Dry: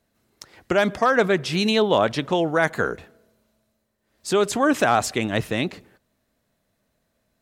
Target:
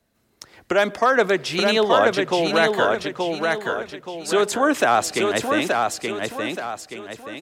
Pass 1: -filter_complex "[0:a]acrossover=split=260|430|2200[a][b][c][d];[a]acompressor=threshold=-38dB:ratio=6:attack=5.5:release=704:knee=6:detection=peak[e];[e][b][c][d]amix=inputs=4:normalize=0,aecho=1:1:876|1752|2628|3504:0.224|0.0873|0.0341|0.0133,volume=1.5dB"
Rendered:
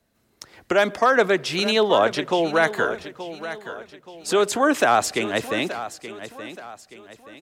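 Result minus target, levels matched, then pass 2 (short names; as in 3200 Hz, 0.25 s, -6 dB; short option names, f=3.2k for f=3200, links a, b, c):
echo-to-direct -8 dB
-filter_complex "[0:a]acrossover=split=260|430|2200[a][b][c][d];[a]acompressor=threshold=-38dB:ratio=6:attack=5.5:release=704:knee=6:detection=peak[e];[e][b][c][d]amix=inputs=4:normalize=0,aecho=1:1:876|1752|2628|3504|4380:0.668|0.261|0.102|0.0396|0.0155,volume=1.5dB"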